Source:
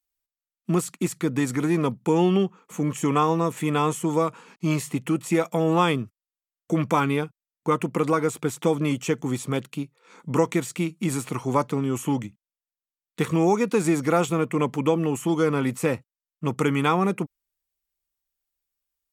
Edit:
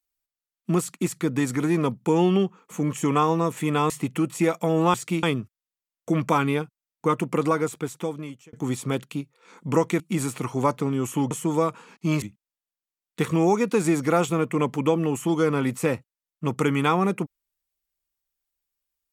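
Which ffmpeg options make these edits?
-filter_complex "[0:a]asplit=8[a][b][c][d][e][f][g][h];[a]atrim=end=3.902[i];[b]atrim=start=4.808:end=5.852[j];[c]atrim=start=10.618:end=10.912[k];[d]atrim=start=5.848:end=9.15,asetpts=PTS-STARTPTS,afade=t=out:st=2.252:d=1.05[l];[e]atrim=start=9.15:end=10.622,asetpts=PTS-STARTPTS,afade=t=in:d=0.004:c=hsin[m];[f]atrim=start=10.908:end=12.222[n];[g]atrim=start=3.898:end=4.812[o];[h]atrim=start=12.218[p];[i][j]acrossfade=d=0.004:c1=hsin:c2=hsin[q];[q][k]acrossfade=d=0.004:c1=hsin:c2=hsin[r];[l][m]concat=n=2:v=0:a=1[s];[r][s]acrossfade=d=0.004:c1=hsin:c2=hsin[t];[t][n]acrossfade=d=0.004:c1=hsin:c2=hsin[u];[u][o]acrossfade=d=0.004:c1=hsin:c2=hsin[v];[v][p]acrossfade=d=0.004:c1=hsin:c2=hsin"

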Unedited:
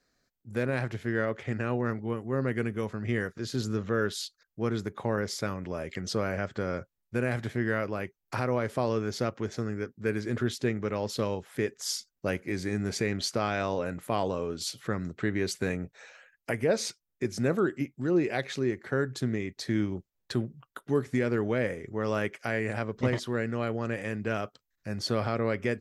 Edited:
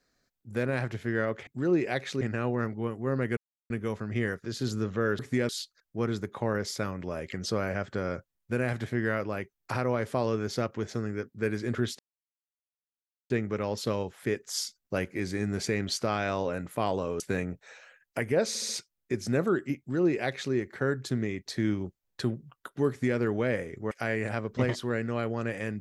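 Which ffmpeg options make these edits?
-filter_complex "[0:a]asplit=12[a][b][c][d][e][f][g][h][i][j][k][l];[a]atrim=end=1.472[m];[b]atrim=start=17.898:end=18.642[n];[c]atrim=start=1.468:end=2.63,asetpts=PTS-STARTPTS,afade=t=out:st=1.158:d=0.004:c=hsin,apad=pad_dur=0.33[o];[d]atrim=start=2.63:end=4.122,asetpts=PTS-STARTPTS,afade=t=in:d=0.004:c=hsin[p];[e]atrim=start=20.998:end=21.302[q];[f]atrim=start=4.118:end=10.62,asetpts=PTS-STARTPTS,afade=t=out:st=6.498:d=0.004:c=hsin,apad=pad_dur=1.31[r];[g]atrim=start=10.62:end=14.522,asetpts=PTS-STARTPTS,afade=t=in:d=0.004:c=hsin[s];[h]atrim=start=15.518:end=16.872[t];[i]atrim=start=16.798:end=16.872[u];[j]atrim=start=16.798:end=16.872[v];[k]atrim=start=16.798:end=22.022[w];[l]atrim=start=22.348[x];[m][n]acrossfade=d=0.004:c1=hsin:c2=hsin[y];[o][p]concat=n=2:v=0:a=1[z];[y][z]acrossfade=d=0.004:c1=hsin:c2=hsin[aa];[aa][q]acrossfade=d=0.004:c1=hsin:c2=hsin[ab];[r][s]concat=n=2:v=0:a=1[ac];[ab][ac]acrossfade=d=0.004:c1=hsin:c2=hsin[ad];[ad][t]acrossfade=d=0.004:c1=hsin:c2=hsin[ae];[ae][u]acrossfade=d=0.004:c1=hsin:c2=hsin[af];[af][v]acrossfade=d=0.004:c1=hsin:c2=hsin[ag];[ag][w]acrossfade=d=0.004:c1=hsin:c2=hsin[ah];[ah][x]acrossfade=d=0.004:c1=hsin:c2=hsin"

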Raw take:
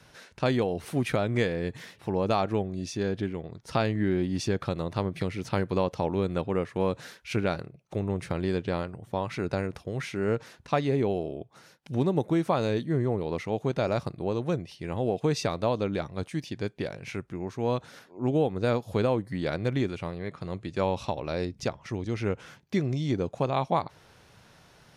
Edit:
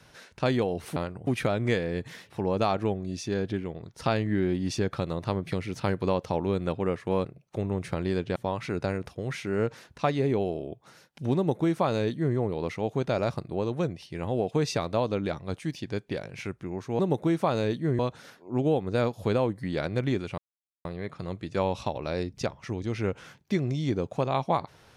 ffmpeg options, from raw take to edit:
-filter_complex "[0:a]asplit=8[a][b][c][d][e][f][g][h];[a]atrim=end=0.962[i];[b]atrim=start=8.738:end=9.052[j];[c]atrim=start=0.958:end=6.942[k];[d]atrim=start=7.628:end=8.742[l];[e]atrim=start=9.048:end=17.682[m];[f]atrim=start=12.048:end=13.052[n];[g]atrim=start=17.678:end=20.07,asetpts=PTS-STARTPTS,afade=t=out:st=2.388:d=0.004:c=hsin,apad=pad_dur=0.47[o];[h]atrim=start=20.07,asetpts=PTS-STARTPTS,afade=t=in:d=0.004:c=hsin[p];[i][j]acrossfade=d=0.004:c1=hsin:c2=hsin[q];[q][k]acrossfade=d=0.004:c1=hsin:c2=hsin[r];[r][l]acrossfade=d=0.004:c1=hsin:c2=hsin[s];[s][m]acrossfade=d=0.004:c1=hsin:c2=hsin[t];[t][n]acrossfade=d=0.004:c1=hsin:c2=hsin[u];[o][p]concat=n=2:v=0:a=1[v];[u][v]acrossfade=d=0.004:c1=hsin:c2=hsin"

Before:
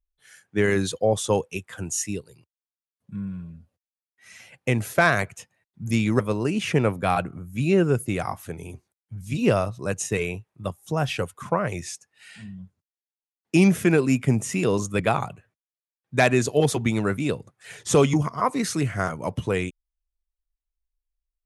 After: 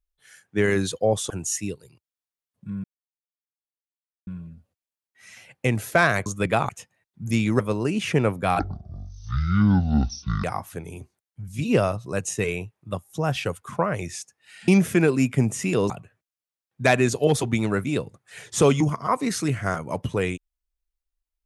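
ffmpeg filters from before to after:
-filter_complex "[0:a]asplit=9[a][b][c][d][e][f][g][h][i];[a]atrim=end=1.302[j];[b]atrim=start=1.758:end=3.3,asetpts=PTS-STARTPTS,afade=t=out:st=1.538:d=0.004:c=hsin,apad=pad_dur=1.43[k];[c]atrim=start=3.3:end=5.292,asetpts=PTS-STARTPTS,afade=t=in:d=0.004:c=hsin[l];[d]atrim=start=14.798:end=15.232[m];[e]atrim=start=5.288:end=7.194[n];[f]atrim=start=7.19:end=8.17,asetpts=PTS-STARTPTS,asetrate=23373,aresample=44100,atrim=end_sample=81543,asetpts=PTS-STARTPTS[o];[g]atrim=start=8.166:end=12.412[p];[h]atrim=start=13.578:end=14.802[q];[i]atrim=start=15.228[r];[k][l]concat=n=2:v=0:a=1[s];[j][s]acrossfade=d=0.004:c1=hsin:c2=hsin[t];[t][m]acrossfade=d=0.004:c1=hsin:c2=hsin[u];[u][n]acrossfade=d=0.004:c1=hsin:c2=hsin[v];[v][o]acrossfade=d=0.004:c1=hsin:c2=hsin[w];[w][p]acrossfade=d=0.004:c1=hsin:c2=hsin[x];[x][q]acrossfade=d=0.004:c1=hsin:c2=hsin[y];[y][r]acrossfade=d=0.004:c1=hsin:c2=hsin"

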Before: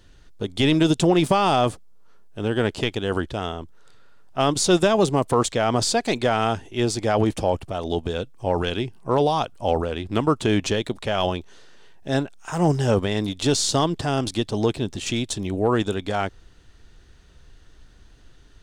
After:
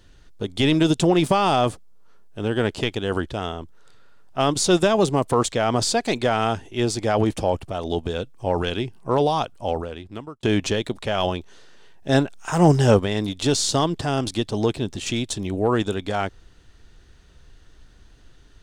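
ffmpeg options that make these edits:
-filter_complex "[0:a]asplit=4[a][b][c][d];[a]atrim=end=10.43,asetpts=PTS-STARTPTS,afade=t=out:st=9.39:d=1.04[e];[b]atrim=start=10.43:end=12.092,asetpts=PTS-STARTPTS,afade=t=in:d=0.004:c=hsin[f];[c]atrim=start=12.088:end=12.972,asetpts=PTS-STARTPTS,volume=4.5dB[g];[d]atrim=start=12.968[h];[e][f]concat=n=2:v=0:a=1[i];[i][g]acrossfade=d=0.004:c1=hsin:c2=hsin[j];[j][h]acrossfade=d=0.004:c1=hsin:c2=hsin"

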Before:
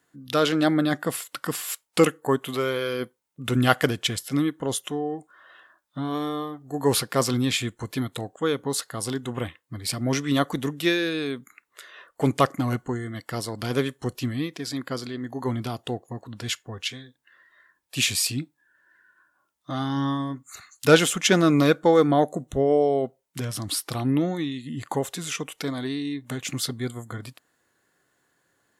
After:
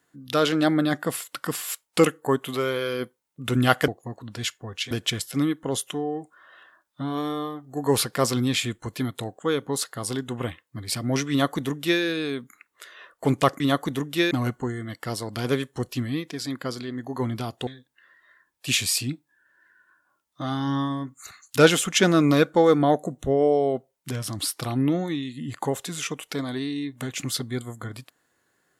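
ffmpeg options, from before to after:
-filter_complex "[0:a]asplit=6[a][b][c][d][e][f];[a]atrim=end=3.882[g];[b]atrim=start=15.928:end=16.962[h];[c]atrim=start=3.878:end=12.572[i];[d]atrim=start=10.268:end=10.982[j];[e]atrim=start=12.568:end=15.932[k];[f]atrim=start=16.958[l];[g][h]acrossfade=d=0.004:c1=hsin:c2=hsin[m];[m][i]acrossfade=d=0.004:c1=hsin:c2=hsin[n];[n][j]acrossfade=d=0.004:c1=hsin:c2=hsin[o];[o][k]acrossfade=d=0.004:c1=hsin:c2=hsin[p];[p][l]acrossfade=d=0.004:c1=hsin:c2=hsin"

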